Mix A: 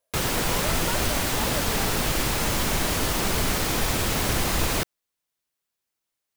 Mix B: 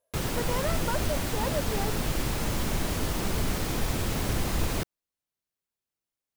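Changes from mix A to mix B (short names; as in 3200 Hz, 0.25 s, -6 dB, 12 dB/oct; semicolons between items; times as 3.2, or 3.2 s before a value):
background -8.5 dB; master: add low shelf 470 Hz +7.5 dB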